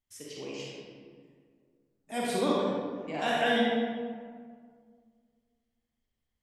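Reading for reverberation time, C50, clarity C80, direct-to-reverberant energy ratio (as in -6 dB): 1.9 s, -2.5 dB, 0.0 dB, -5.5 dB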